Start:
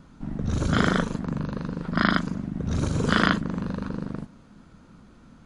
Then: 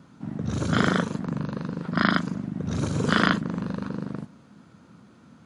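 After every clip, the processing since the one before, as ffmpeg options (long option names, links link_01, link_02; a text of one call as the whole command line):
ffmpeg -i in.wav -af "highpass=frequency=93:width=0.5412,highpass=frequency=93:width=1.3066" out.wav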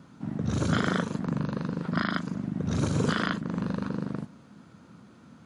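ffmpeg -i in.wav -af "alimiter=limit=-13dB:level=0:latency=1:release=311" out.wav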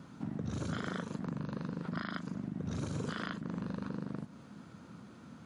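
ffmpeg -i in.wav -af "acompressor=threshold=-36dB:ratio=4" out.wav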